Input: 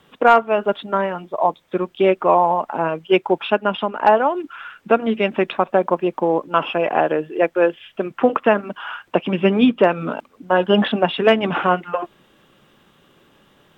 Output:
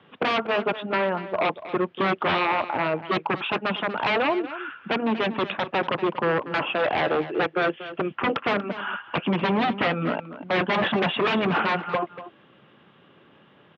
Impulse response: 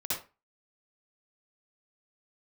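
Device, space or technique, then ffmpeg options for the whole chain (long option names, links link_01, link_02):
synthesiser wavefolder: -filter_complex "[0:a]asettb=1/sr,asplit=3[link_01][link_02][link_03];[link_01]atrim=end=10.564[link_04];[link_02]atrim=start=10.56:end=11.42,asetpts=PTS-STARTPTS,afade=type=in:duration=0.004:curve=qsin,afade=type=out:start_time=0.856:duration=0.004:curve=qsin,equalizer=frequency=720:width_type=o:width=1.8:gain=4[link_05];[link_03]atrim=start=11.416[link_06];[link_04][link_05]acrossfade=duration=0.004:curve1=hsin:curve2=qsin[link_07];[link_07][link_06]acrossfade=duration=0.004:curve1=qsin:curve2=hsin,aeval=exprs='0.15*(abs(mod(val(0)/0.15+3,4)-2)-1)':channel_layout=same,highpass=frequency=93:width=0.5412,highpass=frequency=93:width=1.3066,lowpass=frequency=3200:width=0.5412,lowpass=frequency=3200:width=1.3066,aecho=1:1:238:0.2"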